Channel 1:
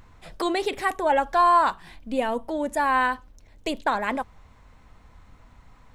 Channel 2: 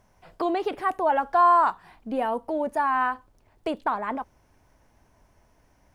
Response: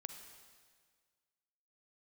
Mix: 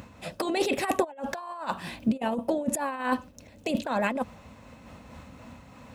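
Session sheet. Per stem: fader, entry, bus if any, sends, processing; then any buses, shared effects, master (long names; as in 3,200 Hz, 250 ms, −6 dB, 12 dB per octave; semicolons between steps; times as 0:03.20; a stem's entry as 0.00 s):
+0.5 dB, 0.00 s, no send, high-shelf EQ 3,200 Hz +5.5 dB; hollow resonant body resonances 230/540/2,600 Hz, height 11 dB, ringing for 25 ms
−5.5 dB, 0.00 s, no send, gate on every frequency bin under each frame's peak −15 dB strong; random phases in short frames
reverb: not used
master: high-pass filter 62 Hz 24 dB per octave; compressor whose output falls as the input rises −23 dBFS, ratio −0.5; amplitude modulation by smooth noise, depth 60%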